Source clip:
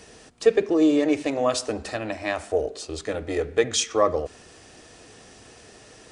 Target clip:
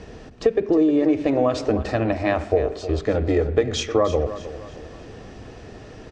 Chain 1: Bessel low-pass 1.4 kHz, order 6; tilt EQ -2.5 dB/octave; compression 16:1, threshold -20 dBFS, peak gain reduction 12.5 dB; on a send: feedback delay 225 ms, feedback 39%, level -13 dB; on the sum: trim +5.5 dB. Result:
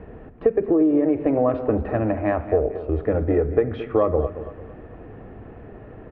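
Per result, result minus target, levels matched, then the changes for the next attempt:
4 kHz band -19.5 dB; echo 85 ms early
change: Bessel low-pass 4.9 kHz, order 6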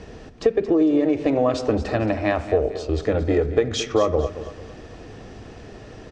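echo 85 ms early
change: feedback delay 310 ms, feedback 39%, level -13 dB

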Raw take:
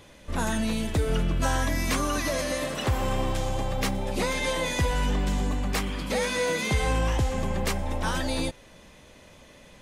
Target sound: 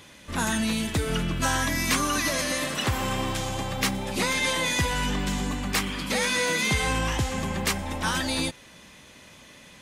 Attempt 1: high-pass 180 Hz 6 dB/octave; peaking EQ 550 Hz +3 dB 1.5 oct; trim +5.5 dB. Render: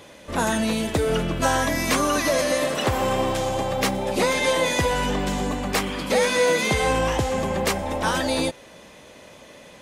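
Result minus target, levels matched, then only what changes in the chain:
500 Hz band +7.0 dB
change: peaking EQ 550 Hz -8 dB 1.5 oct

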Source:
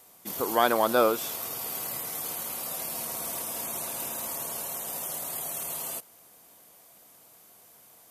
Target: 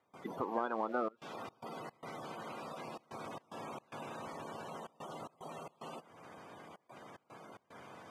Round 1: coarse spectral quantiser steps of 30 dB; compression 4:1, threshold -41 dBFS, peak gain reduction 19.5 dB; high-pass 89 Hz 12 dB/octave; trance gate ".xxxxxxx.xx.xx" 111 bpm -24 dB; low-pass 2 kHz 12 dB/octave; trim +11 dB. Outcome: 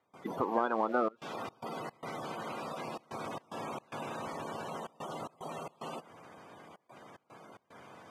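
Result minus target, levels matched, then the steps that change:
compression: peak gain reduction -5 dB
change: compression 4:1, threshold -48 dBFS, peak gain reduction 25 dB

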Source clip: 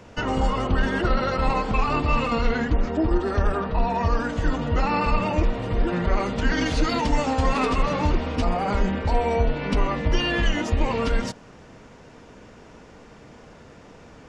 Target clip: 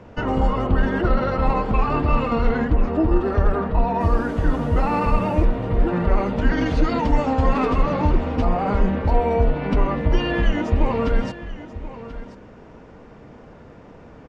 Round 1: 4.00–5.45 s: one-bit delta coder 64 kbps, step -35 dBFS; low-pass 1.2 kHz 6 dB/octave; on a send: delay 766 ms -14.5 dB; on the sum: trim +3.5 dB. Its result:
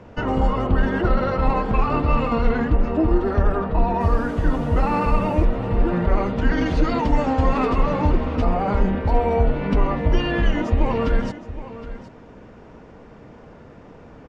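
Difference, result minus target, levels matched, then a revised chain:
echo 267 ms early
4.00–5.45 s: one-bit delta coder 64 kbps, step -35 dBFS; low-pass 1.2 kHz 6 dB/octave; on a send: delay 1033 ms -14.5 dB; on the sum: trim +3.5 dB

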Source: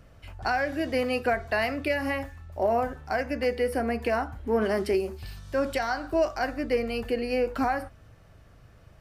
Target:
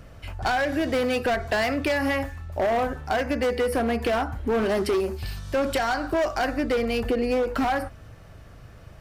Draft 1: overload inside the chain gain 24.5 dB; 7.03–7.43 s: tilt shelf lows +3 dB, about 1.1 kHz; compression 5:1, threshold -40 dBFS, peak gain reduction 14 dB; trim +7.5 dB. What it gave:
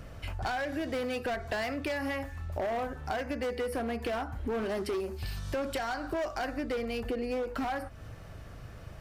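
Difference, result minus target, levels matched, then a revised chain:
compression: peak gain reduction +9 dB
overload inside the chain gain 24.5 dB; 7.03–7.43 s: tilt shelf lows +3 dB, about 1.1 kHz; compression 5:1, threshold -28.5 dBFS, peak gain reduction 5 dB; trim +7.5 dB

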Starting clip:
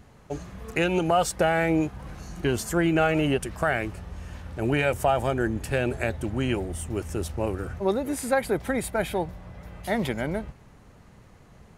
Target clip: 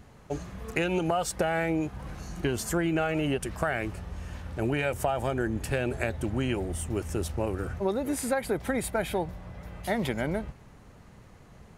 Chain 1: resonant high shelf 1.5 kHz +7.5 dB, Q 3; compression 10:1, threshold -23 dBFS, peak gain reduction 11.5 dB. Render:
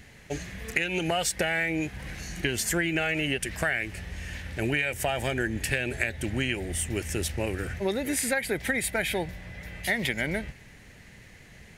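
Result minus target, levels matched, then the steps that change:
4 kHz band +6.0 dB
remove: resonant high shelf 1.5 kHz +7.5 dB, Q 3

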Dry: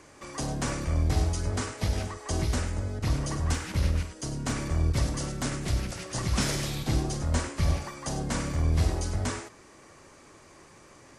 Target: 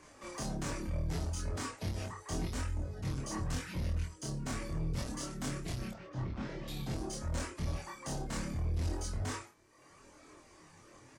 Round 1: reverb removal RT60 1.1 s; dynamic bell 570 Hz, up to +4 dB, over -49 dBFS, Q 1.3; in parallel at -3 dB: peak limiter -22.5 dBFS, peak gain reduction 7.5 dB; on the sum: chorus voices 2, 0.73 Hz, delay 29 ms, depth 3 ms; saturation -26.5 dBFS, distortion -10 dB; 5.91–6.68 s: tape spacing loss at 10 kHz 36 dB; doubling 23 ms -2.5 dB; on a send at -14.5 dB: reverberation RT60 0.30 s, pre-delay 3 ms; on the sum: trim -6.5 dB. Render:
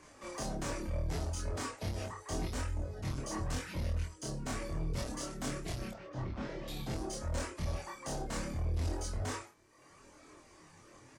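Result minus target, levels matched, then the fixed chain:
500 Hz band +3.0 dB
reverb removal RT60 1.1 s; dynamic bell 160 Hz, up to +4 dB, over -49 dBFS, Q 1.3; in parallel at -3 dB: peak limiter -22.5 dBFS, peak gain reduction 8.5 dB; on the sum: chorus voices 2, 0.73 Hz, delay 29 ms, depth 3 ms; saturation -26.5 dBFS, distortion -10 dB; 5.91–6.68 s: tape spacing loss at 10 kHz 36 dB; doubling 23 ms -2.5 dB; on a send at -14.5 dB: reverberation RT60 0.30 s, pre-delay 3 ms; on the sum: trim -6.5 dB

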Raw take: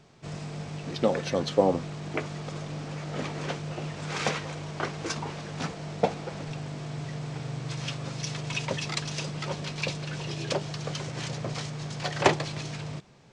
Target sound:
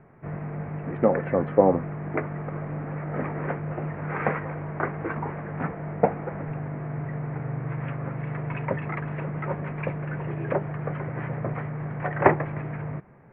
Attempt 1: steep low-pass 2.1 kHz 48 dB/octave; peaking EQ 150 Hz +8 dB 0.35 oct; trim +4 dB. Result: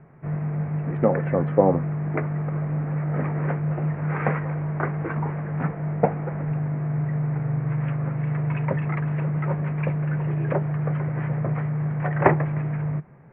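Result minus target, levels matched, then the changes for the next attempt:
125 Hz band +3.5 dB
remove: peaking EQ 150 Hz +8 dB 0.35 oct

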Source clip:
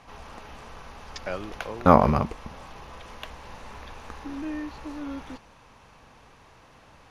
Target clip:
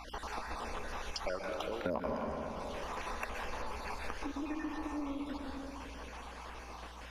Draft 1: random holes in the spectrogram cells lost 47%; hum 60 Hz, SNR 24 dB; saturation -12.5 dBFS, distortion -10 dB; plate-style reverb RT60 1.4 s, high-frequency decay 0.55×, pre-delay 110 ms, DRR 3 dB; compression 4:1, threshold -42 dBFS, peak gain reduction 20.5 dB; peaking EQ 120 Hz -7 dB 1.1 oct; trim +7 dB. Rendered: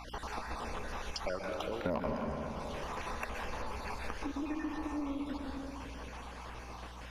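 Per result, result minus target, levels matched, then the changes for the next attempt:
saturation: distortion +9 dB; 125 Hz band +3.0 dB
change: saturation -5 dBFS, distortion -19 dB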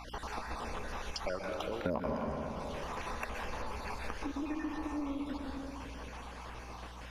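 125 Hz band +3.0 dB
change: peaking EQ 120 Hz -16 dB 1.1 oct

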